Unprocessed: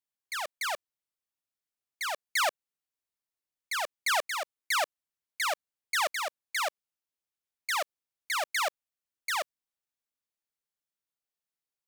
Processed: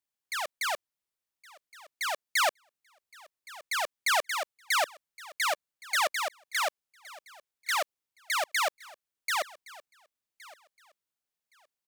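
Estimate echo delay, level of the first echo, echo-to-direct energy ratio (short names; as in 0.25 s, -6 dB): 1.117 s, -21.0 dB, -21.0 dB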